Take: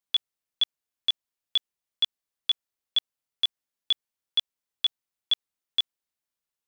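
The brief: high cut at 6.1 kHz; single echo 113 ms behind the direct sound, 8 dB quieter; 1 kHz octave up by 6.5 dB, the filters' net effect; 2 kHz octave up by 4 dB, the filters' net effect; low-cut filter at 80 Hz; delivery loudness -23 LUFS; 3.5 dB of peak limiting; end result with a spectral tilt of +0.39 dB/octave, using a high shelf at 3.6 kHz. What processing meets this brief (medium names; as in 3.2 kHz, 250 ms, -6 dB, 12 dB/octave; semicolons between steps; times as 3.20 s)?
high-pass 80 Hz; low-pass 6.1 kHz; peaking EQ 1 kHz +7 dB; peaking EQ 2 kHz +5 dB; treble shelf 3.6 kHz -4 dB; peak limiter -18 dBFS; delay 113 ms -8 dB; trim +8.5 dB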